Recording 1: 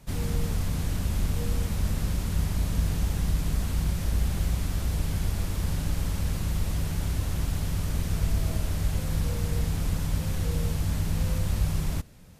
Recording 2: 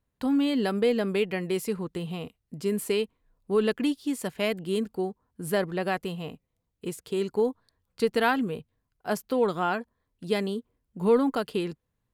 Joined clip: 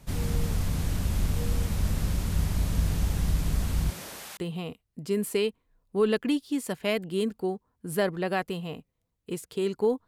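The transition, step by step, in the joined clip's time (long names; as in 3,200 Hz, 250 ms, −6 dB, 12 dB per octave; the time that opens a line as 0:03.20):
recording 1
0:03.89–0:04.37: high-pass filter 240 Hz → 980 Hz
0:04.37: continue with recording 2 from 0:01.92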